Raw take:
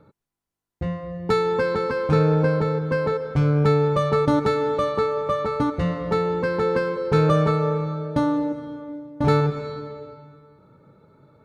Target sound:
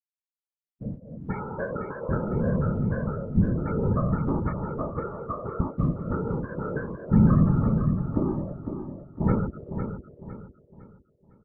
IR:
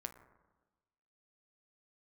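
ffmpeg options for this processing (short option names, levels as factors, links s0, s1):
-af "lowpass=3500,afftfilt=real='re*gte(hypot(re,im),0.141)':imag='im*gte(hypot(re,im),0.141)':win_size=1024:overlap=0.75,asubboost=boost=4.5:cutoff=210,dynaudnorm=f=190:g=13:m=1.88,flanger=delay=1.2:depth=4.6:regen=-21:speed=0.34:shape=sinusoidal,afftfilt=real='hypot(re,im)*cos(2*PI*random(0))':imag='hypot(re,im)*sin(2*PI*random(1))':win_size=512:overlap=0.75,aecho=1:1:506|1012|1518|2024:0.398|0.143|0.0516|0.0186,volume=0.891"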